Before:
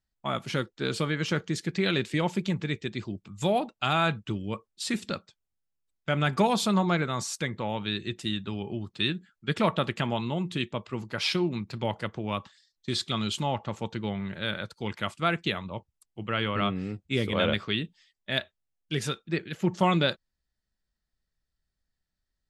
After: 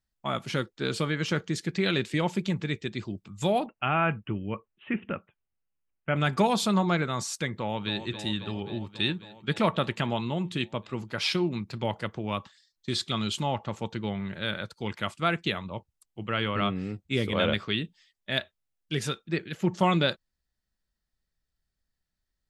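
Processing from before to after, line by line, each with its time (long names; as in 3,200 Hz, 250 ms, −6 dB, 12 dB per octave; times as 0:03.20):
0:03.66–0:06.16: Butterworth low-pass 3,000 Hz 96 dB per octave
0:07.55–0:08.06: delay throw 270 ms, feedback 80%, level −11 dB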